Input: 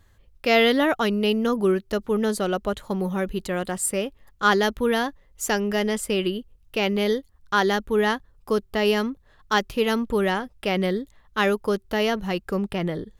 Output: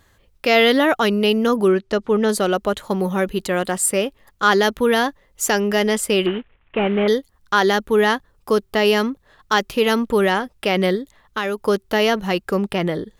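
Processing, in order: 6.26–7.08 s: CVSD coder 16 kbps; bass shelf 120 Hz -11.5 dB; in parallel at +2 dB: peak limiter -16.5 dBFS, peak gain reduction 9.5 dB; 1.68–2.29 s: on the sum: distance through air 66 m; 10.95–11.58 s: compression 2.5:1, threshold -23 dBFS, peak gain reduction 7 dB

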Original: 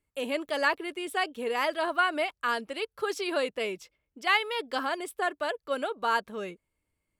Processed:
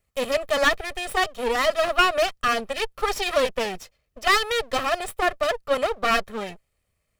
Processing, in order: comb filter that takes the minimum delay 1.6 ms; trim +8.5 dB

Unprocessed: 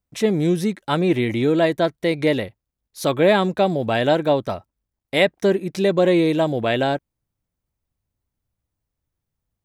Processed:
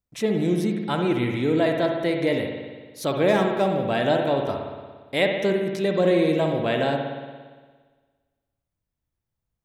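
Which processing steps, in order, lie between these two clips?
3.28–3.81 s: median filter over 9 samples; spring tank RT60 1.5 s, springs 57 ms, chirp 45 ms, DRR 2.5 dB; trim -5 dB

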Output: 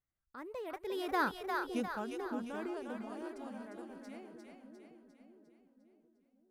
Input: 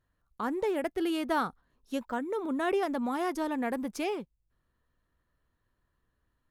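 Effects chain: Doppler pass-by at 1.45 s, 45 m/s, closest 6.1 m; two-band feedback delay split 500 Hz, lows 565 ms, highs 352 ms, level -4 dB; trim +4 dB

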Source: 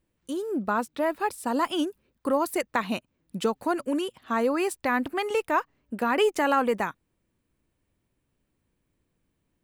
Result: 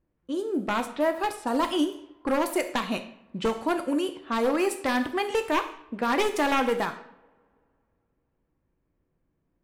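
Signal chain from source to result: one-sided wavefolder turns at -20.5 dBFS; two-slope reverb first 0.65 s, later 2.5 s, from -25 dB, DRR 6 dB; level-controlled noise filter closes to 1.5 kHz, open at -23.5 dBFS

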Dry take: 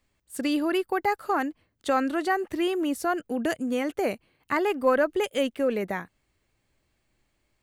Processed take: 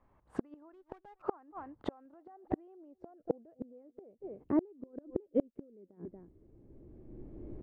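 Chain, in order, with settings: recorder AGC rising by 15 dB/s; peak limiter -19.5 dBFS, peak gain reduction 8.5 dB; delay 233 ms -23.5 dB; low-pass sweep 1 kHz -> 360 Hz, 1.60–4.88 s; inverted gate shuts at -20 dBFS, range -35 dB; 0.73–1.22 s: sliding maximum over 9 samples; trim +3 dB

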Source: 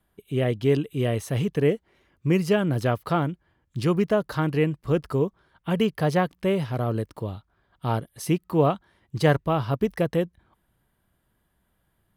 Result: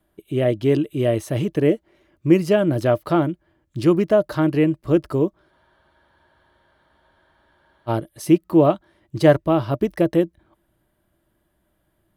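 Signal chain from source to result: small resonant body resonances 330/600 Hz, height 12 dB, ringing for 65 ms; spectral freeze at 5.52 s, 2.37 s; trim +1 dB

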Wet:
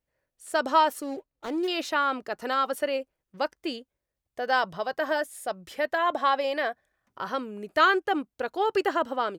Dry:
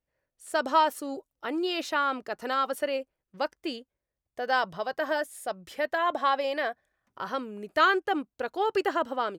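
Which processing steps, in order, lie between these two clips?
1.02–1.68 s: median filter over 25 samples; trim +1.5 dB

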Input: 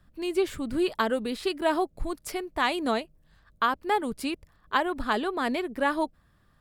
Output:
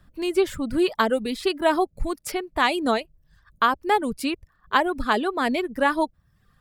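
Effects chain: reverb removal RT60 0.67 s; trim +5 dB

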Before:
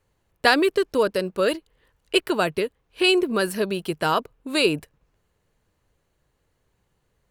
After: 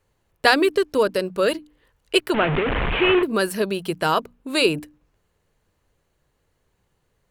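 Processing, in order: 2.34–3.23 s: one-bit delta coder 16 kbps, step -17 dBFS; hum notches 60/120/180/240/300 Hz; trim +1.5 dB

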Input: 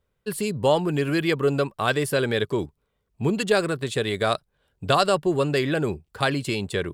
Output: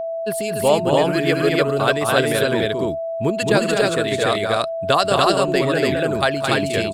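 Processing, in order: loudspeakers at several distances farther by 74 m -3 dB, 86 m -12 dB, 99 m 0 dB; harmonic-percussive split percussive +7 dB; whistle 660 Hz -20 dBFS; trim -3 dB

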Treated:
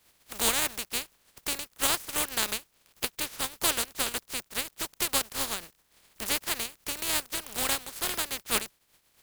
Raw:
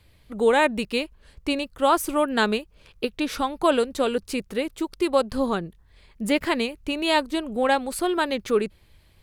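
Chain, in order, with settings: spectral contrast reduction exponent 0.19; transient shaper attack +4 dB, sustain -5 dB; trim -8.5 dB

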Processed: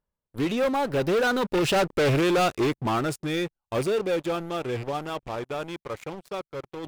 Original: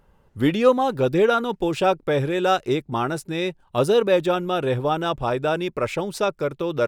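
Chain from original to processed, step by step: rattle on loud lows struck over -27 dBFS, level -25 dBFS; Doppler pass-by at 2.03 s, 19 m/s, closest 7.1 m; reverse; upward compressor, threshold -40 dBFS; reverse; waveshaping leveller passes 5; trim -8.5 dB

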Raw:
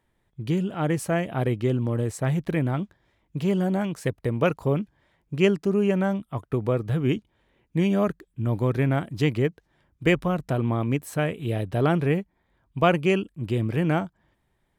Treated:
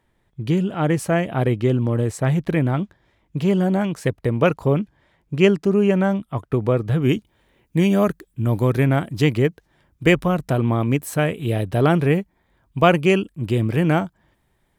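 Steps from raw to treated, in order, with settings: treble shelf 7.4 kHz -3.5 dB, from 7.02 s +10 dB, from 8.85 s +4.5 dB; trim +5 dB

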